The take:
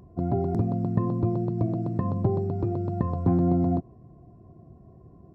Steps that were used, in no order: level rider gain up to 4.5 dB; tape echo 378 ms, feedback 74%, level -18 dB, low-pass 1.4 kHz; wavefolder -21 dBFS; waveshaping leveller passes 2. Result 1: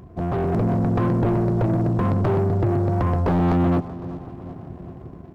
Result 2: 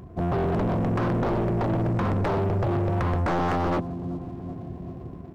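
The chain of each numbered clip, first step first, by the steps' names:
wavefolder > tape echo > waveshaping leveller > level rider; tape echo > level rider > wavefolder > waveshaping leveller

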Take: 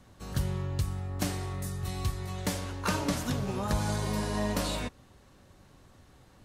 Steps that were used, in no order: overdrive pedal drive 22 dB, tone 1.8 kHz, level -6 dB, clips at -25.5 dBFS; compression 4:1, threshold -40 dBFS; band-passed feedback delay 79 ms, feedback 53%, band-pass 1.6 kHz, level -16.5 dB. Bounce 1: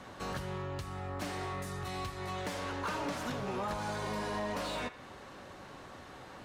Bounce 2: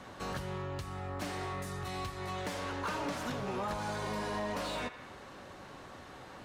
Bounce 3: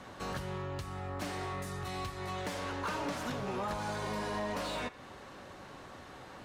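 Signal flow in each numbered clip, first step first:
compression > band-passed feedback delay > overdrive pedal; band-passed feedback delay > compression > overdrive pedal; compression > overdrive pedal > band-passed feedback delay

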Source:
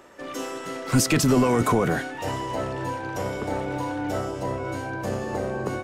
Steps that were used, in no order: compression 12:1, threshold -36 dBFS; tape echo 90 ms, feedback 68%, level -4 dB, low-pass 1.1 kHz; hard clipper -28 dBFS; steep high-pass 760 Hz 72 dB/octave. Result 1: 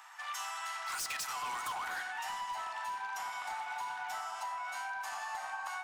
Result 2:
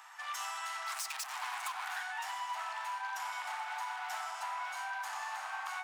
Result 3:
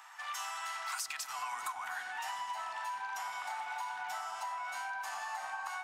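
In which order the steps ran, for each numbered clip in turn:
steep high-pass > tape echo > hard clipper > compression; hard clipper > steep high-pass > compression > tape echo; steep high-pass > tape echo > compression > hard clipper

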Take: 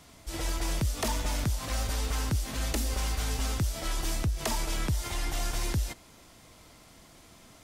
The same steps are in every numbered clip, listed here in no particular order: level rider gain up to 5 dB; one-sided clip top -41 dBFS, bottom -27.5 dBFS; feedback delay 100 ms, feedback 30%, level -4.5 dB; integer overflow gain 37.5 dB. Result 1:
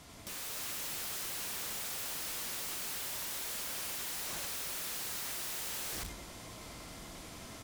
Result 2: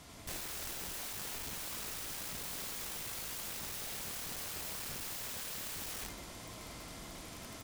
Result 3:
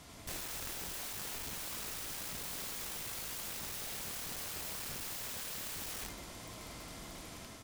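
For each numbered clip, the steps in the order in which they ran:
feedback delay > integer overflow > level rider > one-sided clip; one-sided clip > feedback delay > level rider > integer overflow; one-sided clip > level rider > feedback delay > integer overflow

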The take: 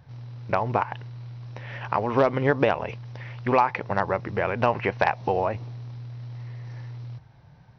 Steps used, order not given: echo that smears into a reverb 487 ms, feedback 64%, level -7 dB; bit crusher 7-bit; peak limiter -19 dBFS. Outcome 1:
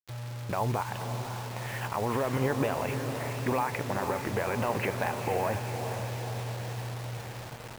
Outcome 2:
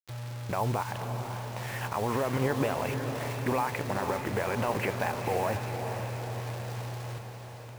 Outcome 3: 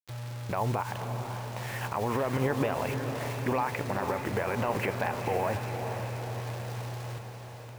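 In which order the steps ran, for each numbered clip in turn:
peak limiter > echo that smears into a reverb > bit crusher; peak limiter > bit crusher > echo that smears into a reverb; bit crusher > peak limiter > echo that smears into a reverb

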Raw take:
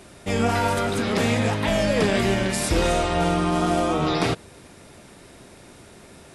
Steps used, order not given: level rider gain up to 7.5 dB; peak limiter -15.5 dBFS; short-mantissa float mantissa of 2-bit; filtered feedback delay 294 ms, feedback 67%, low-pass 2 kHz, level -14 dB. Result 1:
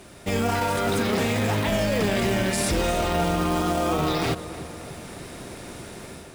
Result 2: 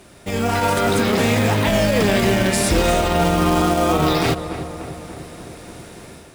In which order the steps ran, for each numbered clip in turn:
level rider > peak limiter > short-mantissa float > filtered feedback delay; short-mantissa float > filtered feedback delay > peak limiter > level rider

